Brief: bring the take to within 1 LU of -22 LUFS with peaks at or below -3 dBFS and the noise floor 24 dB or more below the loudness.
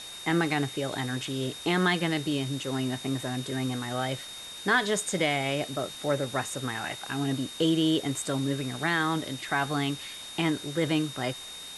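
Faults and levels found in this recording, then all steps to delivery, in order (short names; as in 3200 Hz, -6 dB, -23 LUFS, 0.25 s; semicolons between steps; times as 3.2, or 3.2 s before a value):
steady tone 3700 Hz; tone level -41 dBFS; noise floor -42 dBFS; noise floor target -53 dBFS; loudness -29.0 LUFS; peak -12.0 dBFS; loudness target -22.0 LUFS
-> notch 3700 Hz, Q 30; noise print and reduce 11 dB; gain +7 dB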